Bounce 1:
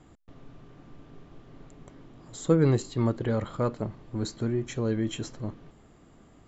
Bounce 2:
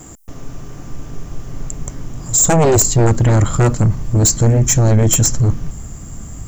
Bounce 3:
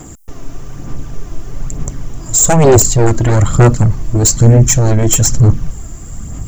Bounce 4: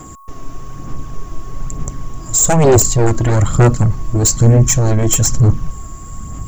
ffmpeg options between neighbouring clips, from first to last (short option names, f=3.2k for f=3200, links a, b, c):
-af "asubboost=boost=6.5:cutoff=140,aexciter=amount=10.6:drive=3.3:freq=5.7k,aeval=exprs='0.422*sin(PI/2*3.98*val(0)/0.422)':c=same"
-af "aphaser=in_gain=1:out_gain=1:delay=3.1:decay=0.41:speed=1.1:type=sinusoidal,volume=1.5dB"
-af "aeval=exprs='val(0)+0.0158*sin(2*PI*1100*n/s)':c=same,volume=-2.5dB"